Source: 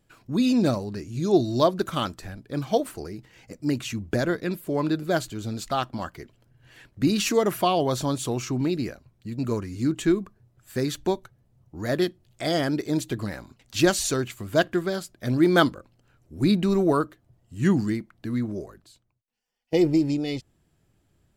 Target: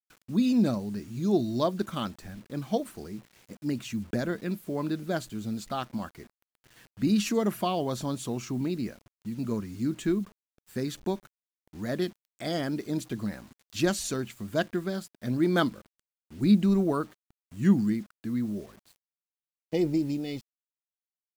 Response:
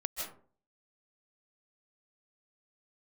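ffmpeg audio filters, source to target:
-af "equalizer=frequency=210:width_type=o:width=0.43:gain=9.5,acrusher=bits=7:mix=0:aa=0.000001,volume=-7dB"

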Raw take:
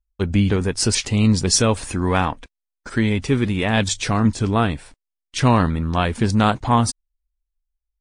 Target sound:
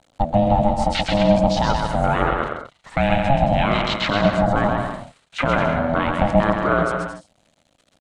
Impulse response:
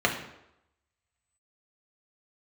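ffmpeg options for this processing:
-filter_complex "[0:a]aeval=exprs='val(0)+0.5*0.0282*sgn(val(0))':channel_layout=same,highpass=310,equalizer=frequency=920:width_type=q:width=4:gain=4,equalizer=frequency=1900:width_type=q:width=4:gain=3,equalizer=frequency=3600:width_type=q:width=4:gain=7,equalizer=frequency=5300:width_type=q:width=4:gain=-8,lowpass=frequency=8400:width=0.5412,lowpass=frequency=8400:width=1.3066,afwtdn=0.0631,lowshelf=frequency=470:gain=7,asplit=2[link_01][link_02];[link_02]acompressor=threshold=-23dB:ratio=6,volume=-0.5dB[link_03];[link_01][link_03]amix=inputs=2:normalize=0,alimiter=limit=-7dB:level=0:latency=1:release=21,acrossover=split=3300[link_04][link_05];[link_05]acompressor=threshold=-33dB:ratio=4:attack=1:release=60[link_06];[link_04][link_06]amix=inputs=2:normalize=0,aecho=1:1:130|221|284.7|329.3|360.5:0.631|0.398|0.251|0.158|0.1,aeval=exprs='val(0)*sin(2*PI*410*n/s)':channel_layout=same,volume=1.5dB"

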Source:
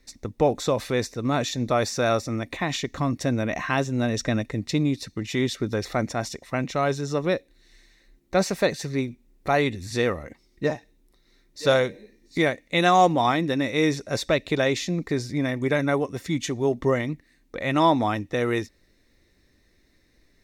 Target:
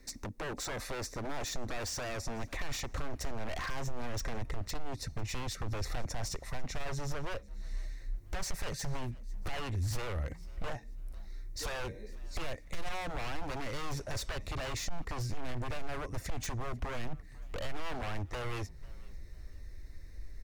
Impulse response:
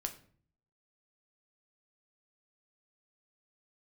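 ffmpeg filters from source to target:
-filter_complex "[0:a]acrossover=split=540[link_01][link_02];[link_01]crystalizer=i=5.5:c=0[link_03];[link_02]equalizer=frequency=3200:width_type=o:width=0.69:gain=-9.5[link_04];[link_03][link_04]amix=inputs=2:normalize=0,acontrast=62,alimiter=limit=-12dB:level=0:latency=1:release=39,acompressor=threshold=-34dB:ratio=2,aeval=exprs='0.0316*(abs(mod(val(0)/0.0316+3,4)-2)-1)':channel_layout=same,asubboost=boost=9.5:cutoff=70,asoftclip=type=tanh:threshold=-22.5dB,asplit=3[link_05][link_06][link_07];[link_06]adelay=495,afreqshift=65,volume=-24dB[link_08];[link_07]adelay=990,afreqshift=130,volume=-34.2dB[link_09];[link_05][link_08][link_09]amix=inputs=3:normalize=0,volume=-2.5dB"

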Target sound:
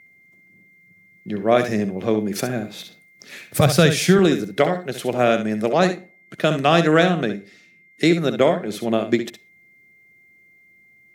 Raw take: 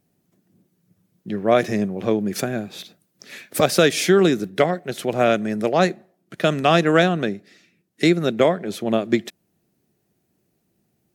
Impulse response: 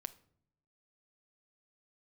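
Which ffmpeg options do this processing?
-filter_complex "[0:a]aeval=exprs='val(0)+0.00398*sin(2*PI*2100*n/s)':channel_layout=same,asettb=1/sr,asplit=3[link_01][link_02][link_03];[link_01]atrim=end=3.484[link_04];[link_02]atrim=start=3.48:end=4.19,asetpts=PTS-STARTPTS,afade=type=in:duration=0.004:curve=qsin,afade=type=out:start_time=0.706:duration=0.004:curve=qsin,lowshelf=frequency=190:width_type=q:width=1.5:gain=10[link_05];[link_03]atrim=start=4.186[link_06];[link_04][link_05]acrossfade=duration=0.004:curve1=hsin:curve2=qsin[link_07];[link_07][link_06]acrossfade=duration=0.004:curve1=qsin:curve2=hsin,asplit=2[link_08][link_09];[1:a]atrim=start_sample=2205,atrim=end_sample=6174,adelay=65[link_10];[link_09][link_10]afir=irnorm=-1:irlink=0,volume=-6dB[link_11];[link_08][link_11]amix=inputs=2:normalize=0"

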